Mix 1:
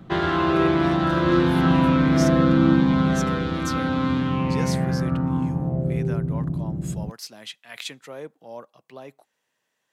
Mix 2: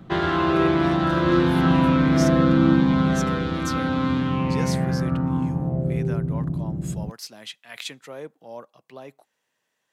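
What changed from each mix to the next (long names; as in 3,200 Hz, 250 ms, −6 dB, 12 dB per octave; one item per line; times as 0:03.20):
nothing changed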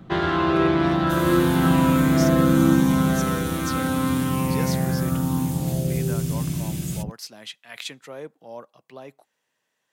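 second sound: unmuted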